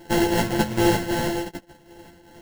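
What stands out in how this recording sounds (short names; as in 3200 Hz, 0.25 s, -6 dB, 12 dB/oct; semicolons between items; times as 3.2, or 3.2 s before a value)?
a buzz of ramps at a fixed pitch in blocks of 128 samples; tremolo triangle 2.6 Hz, depth 75%; aliases and images of a low sample rate 1200 Hz, jitter 0%; a shimmering, thickened sound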